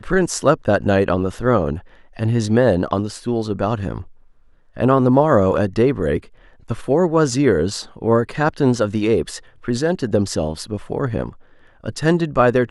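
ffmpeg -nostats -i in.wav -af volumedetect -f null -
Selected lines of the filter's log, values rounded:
mean_volume: -18.7 dB
max_volume: -1.3 dB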